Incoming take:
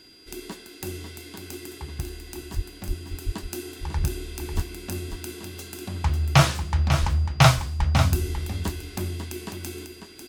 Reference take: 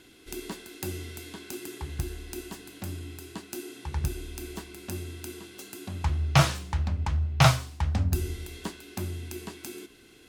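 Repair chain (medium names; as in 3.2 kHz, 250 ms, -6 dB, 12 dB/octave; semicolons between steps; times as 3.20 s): band-stop 4.8 kHz, Q 30; de-plosive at 2.55/2.87/3.25/3.97/4.55/7.00/7.78 s; inverse comb 546 ms -8 dB; trim 0 dB, from 3.11 s -3.5 dB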